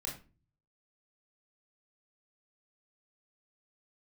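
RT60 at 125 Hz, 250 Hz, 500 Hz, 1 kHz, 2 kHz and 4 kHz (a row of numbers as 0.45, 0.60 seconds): 0.85, 0.55, 0.35, 0.30, 0.30, 0.25 seconds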